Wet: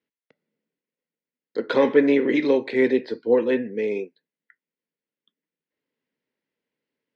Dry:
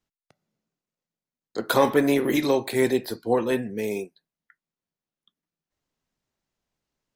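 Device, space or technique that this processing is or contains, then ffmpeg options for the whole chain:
kitchen radio: -af "highpass=210,equalizer=f=260:t=q:w=4:g=5,equalizer=f=470:t=q:w=4:g=8,equalizer=f=730:t=q:w=4:g=-10,equalizer=f=1.2k:t=q:w=4:g=-8,equalizer=f=2k:t=q:w=4:g=5,equalizer=f=3.8k:t=q:w=4:g=-4,lowpass=f=4.1k:w=0.5412,lowpass=f=4.1k:w=1.3066"

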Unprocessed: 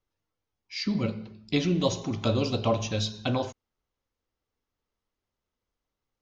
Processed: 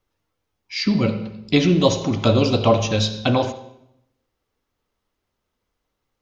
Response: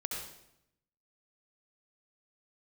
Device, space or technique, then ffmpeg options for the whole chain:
filtered reverb send: -filter_complex "[0:a]asplit=2[a][b];[b]highpass=f=160:p=1,lowpass=4.7k[c];[1:a]atrim=start_sample=2205[d];[c][d]afir=irnorm=-1:irlink=0,volume=-10dB[e];[a][e]amix=inputs=2:normalize=0,volume=7.5dB"

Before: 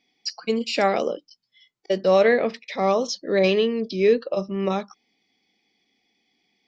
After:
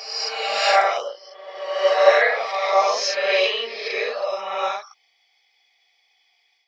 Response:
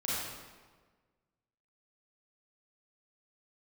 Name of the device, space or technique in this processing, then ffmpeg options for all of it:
ghost voice: -filter_complex "[0:a]areverse[a];[1:a]atrim=start_sample=2205[b];[a][b]afir=irnorm=-1:irlink=0,areverse,highpass=f=690:w=0.5412,highpass=f=690:w=1.3066,volume=1.5dB"

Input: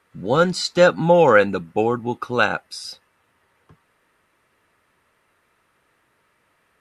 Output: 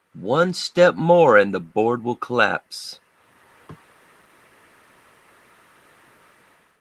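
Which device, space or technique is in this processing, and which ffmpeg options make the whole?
video call: -af "highpass=120,dynaudnorm=f=240:g=5:m=14dB,volume=-1dB" -ar 48000 -c:a libopus -b:a 20k

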